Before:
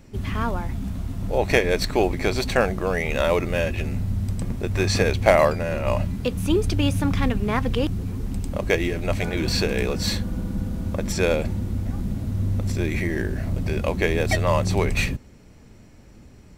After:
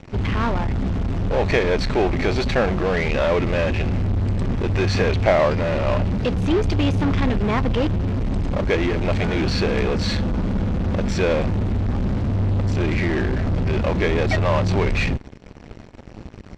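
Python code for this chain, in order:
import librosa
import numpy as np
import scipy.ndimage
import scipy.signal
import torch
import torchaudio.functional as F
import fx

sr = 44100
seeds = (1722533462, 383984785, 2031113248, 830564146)

p1 = fx.fuzz(x, sr, gain_db=40.0, gate_db=-45.0)
p2 = x + F.gain(torch.from_numpy(p1), -7.0).numpy()
p3 = fx.air_absorb(p2, sr, metres=150.0)
y = F.gain(torch.from_numpy(p3), -3.0).numpy()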